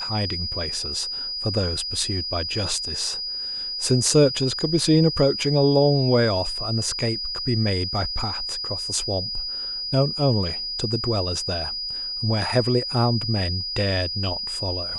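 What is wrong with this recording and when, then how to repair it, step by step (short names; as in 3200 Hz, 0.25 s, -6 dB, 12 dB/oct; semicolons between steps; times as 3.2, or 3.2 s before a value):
tone 4900 Hz -27 dBFS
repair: notch 4900 Hz, Q 30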